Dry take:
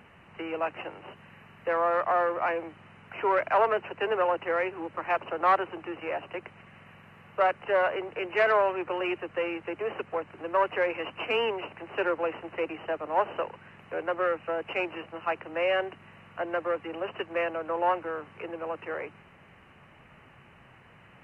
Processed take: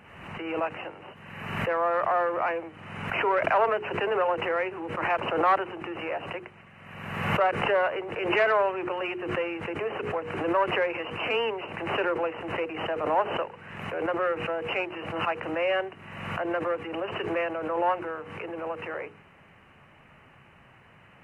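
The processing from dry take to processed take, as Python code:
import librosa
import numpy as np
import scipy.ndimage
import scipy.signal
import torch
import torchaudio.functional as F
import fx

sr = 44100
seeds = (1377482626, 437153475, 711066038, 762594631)

y = fx.hum_notches(x, sr, base_hz=60, count=8)
y = fx.pre_swell(y, sr, db_per_s=47.0)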